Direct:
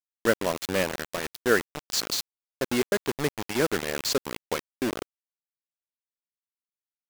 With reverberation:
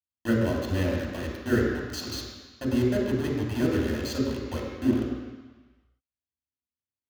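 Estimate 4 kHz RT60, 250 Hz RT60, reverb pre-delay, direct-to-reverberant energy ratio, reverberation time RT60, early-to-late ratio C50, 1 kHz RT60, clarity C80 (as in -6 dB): 1.4 s, 1.3 s, 3 ms, -2.5 dB, 1.2 s, 1.0 dB, 1.4 s, 2.5 dB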